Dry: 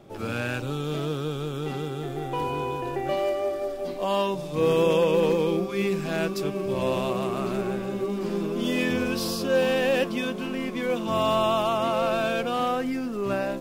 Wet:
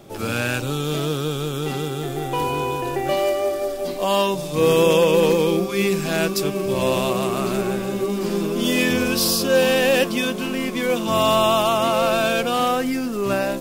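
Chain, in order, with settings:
high-shelf EQ 4,500 Hz +11 dB
level +5 dB

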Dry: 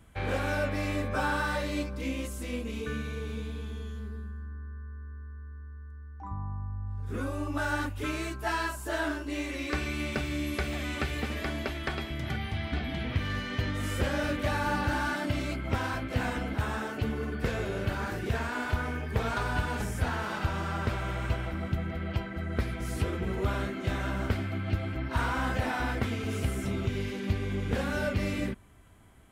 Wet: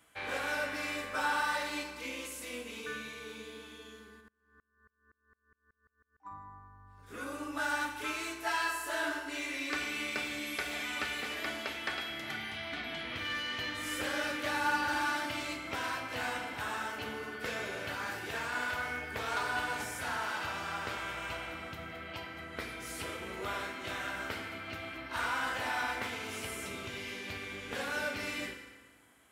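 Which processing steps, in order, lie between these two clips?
high-pass filter 1,200 Hz 6 dB per octave
feedback delay network reverb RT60 1.5 s, low-frequency decay 1.2×, high-frequency decay 0.75×, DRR 3.5 dB
0:04.20–0:06.25: tremolo with a ramp in dB swelling 2.8 Hz → 7.6 Hz, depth 31 dB

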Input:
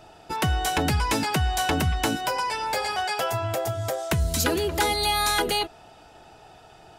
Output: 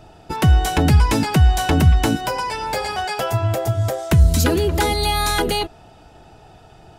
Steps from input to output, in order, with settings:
low-shelf EQ 310 Hz +11 dB
in parallel at −11 dB: dead-zone distortion −33.5 dBFS

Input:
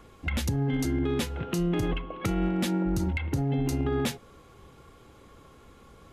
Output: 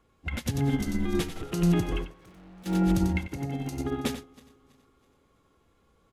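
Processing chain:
feedback delay that plays each chunk backwards 163 ms, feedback 64%, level −12 dB
0:03.27–0:03.77: low-shelf EQ 130 Hz −10.5 dB
in parallel at +0.5 dB: brickwall limiter −28 dBFS, peak gain reduction 10 dB
0:00.79–0:01.43: on the sum: frequency shifter −59 Hz
0:02.04–0:02.66: gain into a clipping stage and back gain 32.5 dB
on a send: single-tap delay 93 ms −5 dB
on the sum: expander for the loud parts 2.5 to 1, over −33 dBFS

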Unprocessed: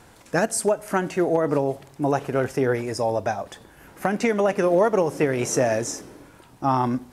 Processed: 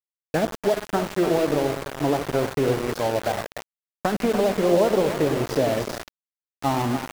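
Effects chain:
hearing-aid frequency compression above 3,300 Hz 1.5 to 1
treble cut that deepens with the level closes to 830 Hz, closed at −18 dBFS
echo with a time of its own for lows and highs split 490 Hz, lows 95 ms, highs 292 ms, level −8 dB
comb and all-pass reverb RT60 1.3 s, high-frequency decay 0.5×, pre-delay 5 ms, DRR 14 dB
centre clipping without the shift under −25 dBFS

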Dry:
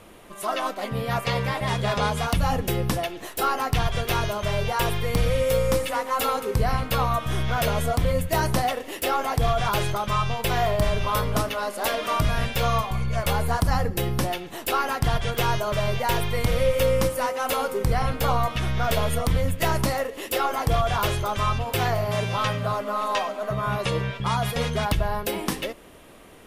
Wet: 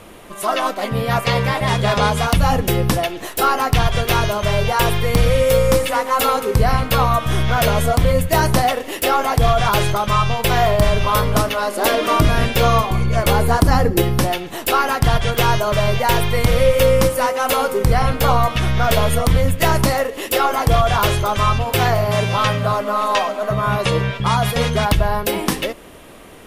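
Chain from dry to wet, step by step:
0:11.71–0:14.02: parametric band 330 Hz +9.5 dB 0.75 octaves
level +7.5 dB

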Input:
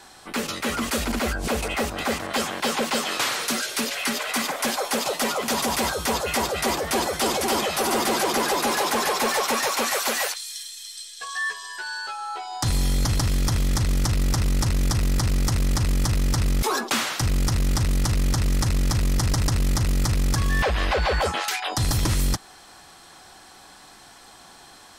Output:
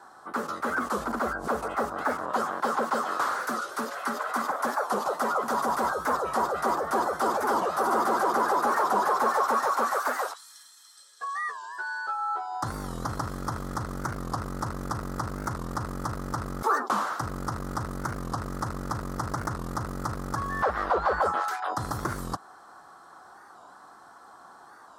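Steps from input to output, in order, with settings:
high-pass filter 300 Hz 6 dB per octave
high shelf with overshoot 1,800 Hz −11.5 dB, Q 3
wow of a warped record 45 rpm, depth 160 cents
level −2.5 dB

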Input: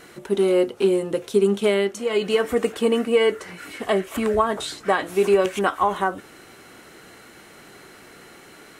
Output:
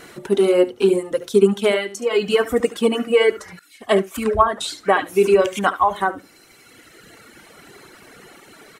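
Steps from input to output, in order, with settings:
single-tap delay 72 ms −7.5 dB
reverb reduction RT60 2 s
0:03.59–0:04.62: multiband upward and downward expander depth 100%
level +4 dB

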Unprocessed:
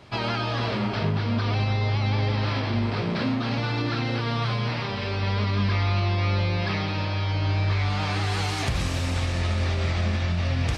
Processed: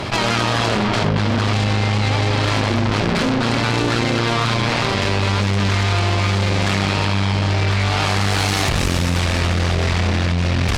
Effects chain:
mains-hum notches 60/120/180 Hz
harmonic generator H 4 −9 dB, 6 −7 dB, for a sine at −13 dBFS
envelope flattener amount 70%
level +3.5 dB

